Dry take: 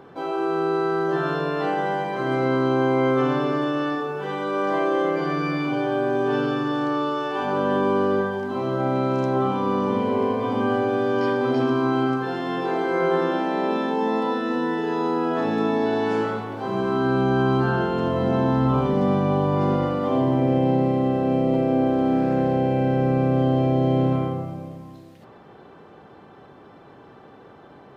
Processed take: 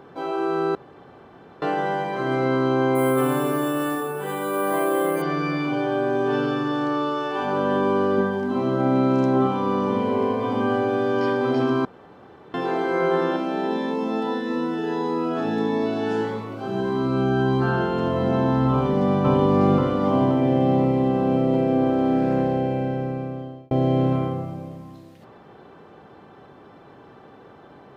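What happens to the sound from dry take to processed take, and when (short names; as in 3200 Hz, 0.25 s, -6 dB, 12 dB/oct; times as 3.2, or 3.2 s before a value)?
0.75–1.62 room tone
2.95–5.22 careless resampling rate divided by 4×, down filtered, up hold
8.17–9.47 bell 240 Hz +7 dB
11.85–12.54 room tone
13.36–17.62 cascading phaser rising 1.6 Hz
18.71–19.25 echo throw 0.53 s, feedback 65%, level -1.5 dB
22.35–23.71 fade out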